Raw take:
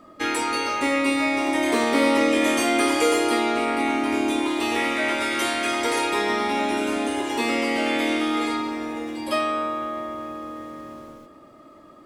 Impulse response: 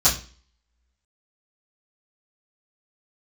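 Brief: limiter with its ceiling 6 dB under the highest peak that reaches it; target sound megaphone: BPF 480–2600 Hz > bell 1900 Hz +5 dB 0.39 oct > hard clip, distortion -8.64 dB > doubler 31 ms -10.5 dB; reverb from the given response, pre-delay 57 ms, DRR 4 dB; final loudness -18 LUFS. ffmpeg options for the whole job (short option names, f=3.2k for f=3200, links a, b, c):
-filter_complex "[0:a]alimiter=limit=-13.5dB:level=0:latency=1,asplit=2[a][b];[1:a]atrim=start_sample=2205,adelay=57[c];[b][c]afir=irnorm=-1:irlink=0,volume=-20dB[d];[a][d]amix=inputs=2:normalize=0,highpass=480,lowpass=2.6k,equalizer=f=1.9k:t=o:w=0.39:g=5,asoftclip=type=hard:threshold=-25.5dB,asplit=2[e][f];[f]adelay=31,volume=-10.5dB[g];[e][g]amix=inputs=2:normalize=0,volume=9.5dB"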